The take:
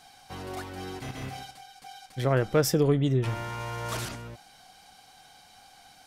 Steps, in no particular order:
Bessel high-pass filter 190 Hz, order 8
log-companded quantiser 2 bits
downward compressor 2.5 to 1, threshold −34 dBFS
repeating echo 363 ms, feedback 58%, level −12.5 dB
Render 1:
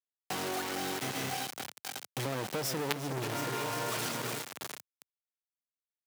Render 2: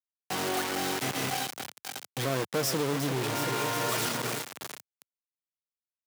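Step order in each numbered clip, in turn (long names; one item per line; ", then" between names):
repeating echo, then log-companded quantiser, then Bessel high-pass filter, then downward compressor
repeating echo, then downward compressor, then log-companded quantiser, then Bessel high-pass filter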